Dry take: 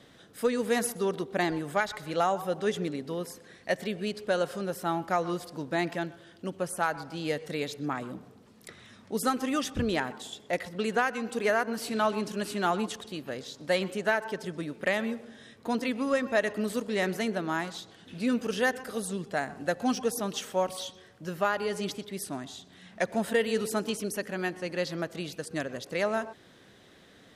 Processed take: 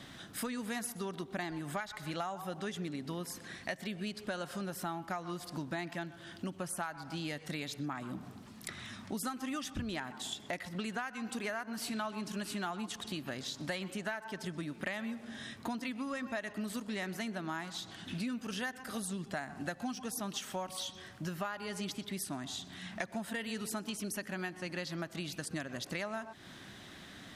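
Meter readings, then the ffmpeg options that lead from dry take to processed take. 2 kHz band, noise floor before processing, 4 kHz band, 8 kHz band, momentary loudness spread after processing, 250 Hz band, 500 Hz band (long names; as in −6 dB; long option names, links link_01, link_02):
−8.0 dB, −56 dBFS, −4.0 dB, −3.5 dB, 5 LU, −6.5 dB, −13.5 dB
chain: -af "equalizer=frequency=470:width_type=o:width=0.52:gain=-13,acompressor=threshold=-43dB:ratio=6,volume=6.5dB"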